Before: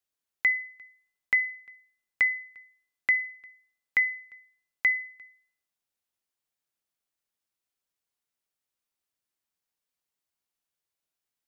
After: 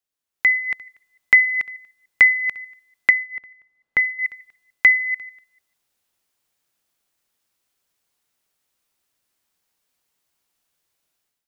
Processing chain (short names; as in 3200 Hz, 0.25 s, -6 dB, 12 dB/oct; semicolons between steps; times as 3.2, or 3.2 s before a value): reverse delay 0.147 s, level -12 dB; 3.1–4.19 LPF 1000 Hz 6 dB/oct; AGC gain up to 12.5 dB